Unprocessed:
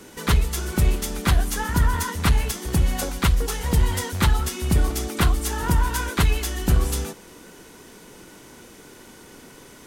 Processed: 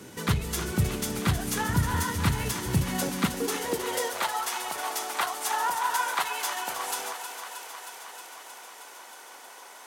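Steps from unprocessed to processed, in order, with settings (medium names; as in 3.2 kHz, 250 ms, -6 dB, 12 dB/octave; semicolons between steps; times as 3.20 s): peak limiter -15 dBFS, peak gain reduction 6.5 dB; thinning echo 314 ms, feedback 78%, high-pass 380 Hz, level -9 dB; high-pass sweep 110 Hz -> 780 Hz, 2.74–4.38 s; trim -2 dB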